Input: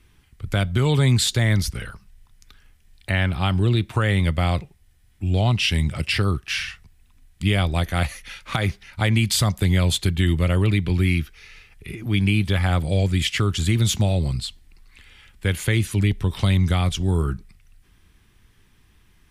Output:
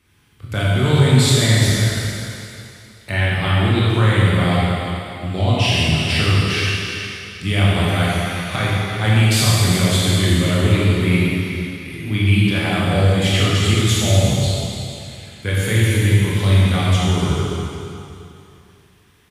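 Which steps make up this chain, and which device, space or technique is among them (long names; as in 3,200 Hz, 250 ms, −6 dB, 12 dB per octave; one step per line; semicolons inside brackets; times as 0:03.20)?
cave (single-tap delay 354 ms −11.5 dB; convolution reverb RT60 2.7 s, pre-delay 17 ms, DRR −7 dB)
high-pass filter 95 Hz
level −2 dB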